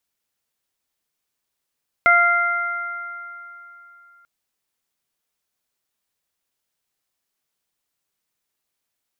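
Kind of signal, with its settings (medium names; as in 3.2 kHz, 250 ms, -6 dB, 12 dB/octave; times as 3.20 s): additive tone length 2.19 s, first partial 695 Hz, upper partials 6/3.5 dB, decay 2.26 s, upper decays 3.39/2.36 s, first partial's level -18 dB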